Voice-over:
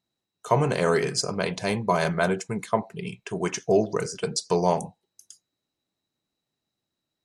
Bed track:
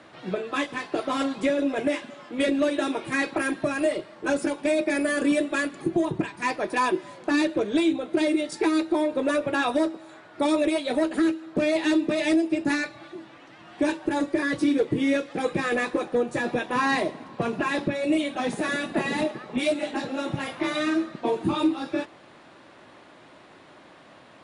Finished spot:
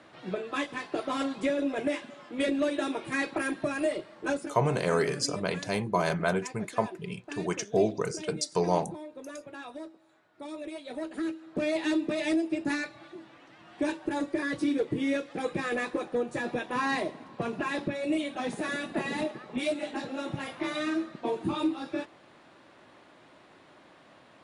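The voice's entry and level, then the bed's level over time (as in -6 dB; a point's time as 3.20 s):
4.05 s, -4.0 dB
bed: 4.31 s -4.5 dB
4.60 s -18.5 dB
10.44 s -18.5 dB
11.68 s -5.5 dB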